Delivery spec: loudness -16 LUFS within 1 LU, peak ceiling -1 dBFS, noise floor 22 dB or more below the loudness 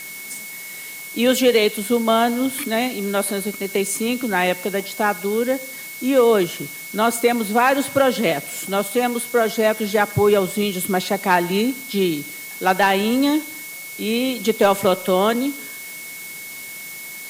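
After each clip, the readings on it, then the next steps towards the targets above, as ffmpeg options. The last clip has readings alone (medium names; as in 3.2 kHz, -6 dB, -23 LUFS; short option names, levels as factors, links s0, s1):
steady tone 2.2 kHz; tone level -35 dBFS; noise floor -35 dBFS; noise floor target -42 dBFS; loudness -19.5 LUFS; peak level -5.0 dBFS; loudness target -16.0 LUFS
-> -af "bandreject=f=2200:w=30"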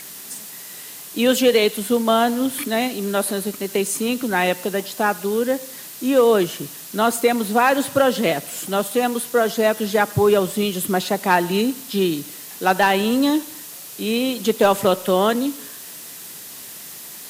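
steady tone not found; noise floor -37 dBFS; noise floor target -42 dBFS
-> -af "afftdn=nr=6:nf=-37"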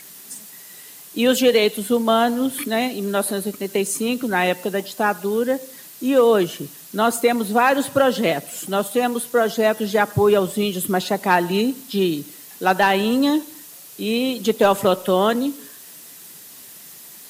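noise floor -42 dBFS; loudness -20.0 LUFS; peak level -5.5 dBFS; loudness target -16.0 LUFS
-> -af "volume=1.58"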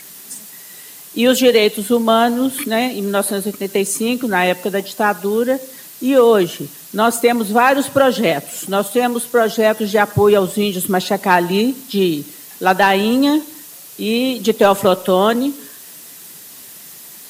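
loudness -16.0 LUFS; peak level -1.5 dBFS; noise floor -38 dBFS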